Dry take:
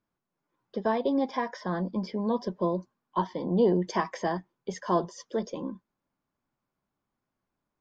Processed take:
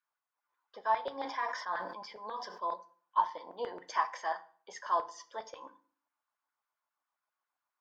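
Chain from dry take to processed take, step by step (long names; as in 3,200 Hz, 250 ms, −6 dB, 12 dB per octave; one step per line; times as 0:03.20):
auto-filter high-pass saw down 7.4 Hz 760–1,600 Hz
feedback delay network reverb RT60 0.46 s, low-frequency decay 1.25×, high-frequency decay 0.8×, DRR 10 dB
0:01.21–0:02.74: level that may fall only so fast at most 55 dB per second
level −6 dB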